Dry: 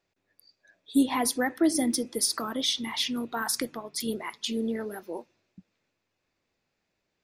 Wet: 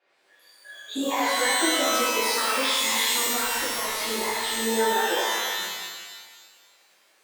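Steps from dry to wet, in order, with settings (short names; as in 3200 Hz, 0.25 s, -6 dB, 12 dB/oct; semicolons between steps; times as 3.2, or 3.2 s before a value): HPF 180 Hz 12 dB/oct; three-band isolator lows -17 dB, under 520 Hz, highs -19 dB, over 3400 Hz; compressor 6:1, threshold -42 dBFS, peak gain reduction 15.5 dB; 3.28–4.63 tube stage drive 42 dB, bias 0.25; shimmer reverb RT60 1.5 s, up +12 st, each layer -2 dB, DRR -11.5 dB; gain +6.5 dB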